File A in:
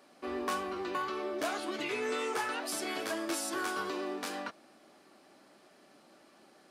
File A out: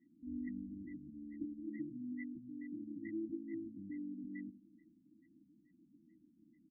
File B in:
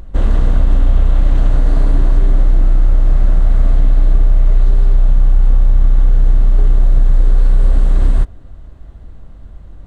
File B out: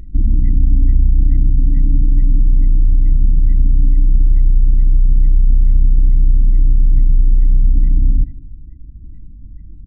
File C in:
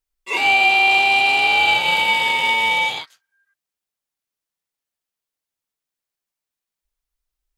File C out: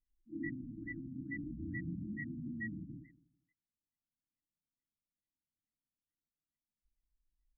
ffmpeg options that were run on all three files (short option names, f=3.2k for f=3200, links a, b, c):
-filter_complex "[0:a]afftfilt=real='re*(1-between(b*sr/4096,340,1900))':imag='im*(1-between(b*sr/4096,340,1900))':win_size=4096:overlap=0.75,adynamicequalizer=threshold=0.00224:dfrequency=5000:dqfactor=7.9:tfrequency=5000:tqfactor=7.9:attack=5:release=100:ratio=0.375:range=2:mode=boostabove:tftype=bell,asplit=2[a][b];[b]aecho=0:1:81|162|243|324|405|486:0.178|0.103|0.0598|0.0347|0.0201|0.0117[c];[a][c]amix=inputs=2:normalize=0,afftfilt=real='re*lt(b*sr/1024,290*pow(2100/290,0.5+0.5*sin(2*PI*2.3*pts/sr)))':imag='im*lt(b*sr/1024,290*pow(2100/290,0.5+0.5*sin(2*PI*2.3*pts/sr)))':win_size=1024:overlap=0.75"